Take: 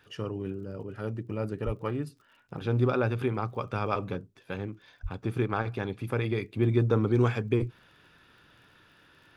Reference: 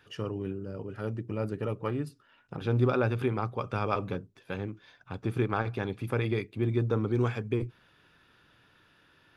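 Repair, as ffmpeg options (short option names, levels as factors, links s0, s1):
-filter_complex "[0:a]adeclick=t=4,asplit=3[s0][s1][s2];[s0]afade=t=out:st=1.65:d=0.02[s3];[s1]highpass=f=140:w=0.5412,highpass=f=140:w=1.3066,afade=t=in:st=1.65:d=0.02,afade=t=out:st=1.77:d=0.02[s4];[s2]afade=t=in:st=1.77:d=0.02[s5];[s3][s4][s5]amix=inputs=3:normalize=0,asplit=3[s6][s7][s8];[s6]afade=t=out:st=5.02:d=0.02[s9];[s7]highpass=f=140:w=0.5412,highpass=f=140:w=1.3066,afade=t=in:st=5.02:d=0.02,afade=t=out:st=5.14:d=0.02[s10];[s8]afade=t=in:st=5.14:d=0.02[s11];[s9][s10][s11]amix=inputs=3:normalize=0,asetnsamples=n=441:p=0,asendcmd='6.42 volume volume -3.5dB',volume=1"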